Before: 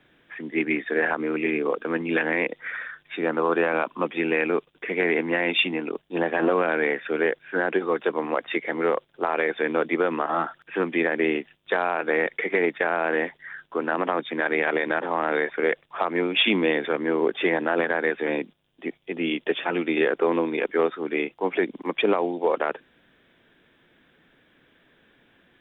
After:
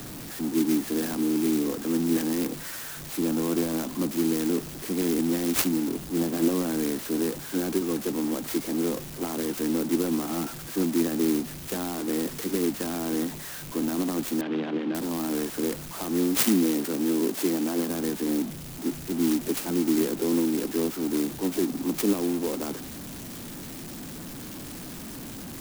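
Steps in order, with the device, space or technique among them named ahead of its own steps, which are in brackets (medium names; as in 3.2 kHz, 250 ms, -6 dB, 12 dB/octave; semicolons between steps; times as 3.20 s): high-order bell 1 kHz -14.5 dB 2.9 oct; early CD player with a faulty converter (jump at every zero crossing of -33 dBFS; sampling jitter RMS 0.13 ms); 16.38–17.90 s: high-pass 170 Hz 12 dB/octave; dynamic bell 270 Hz, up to +5 dB, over -40 dBFS, Q 1.2; 14.41–14.95 s: Chebyshev band-pass 150–3200 Hz, order 3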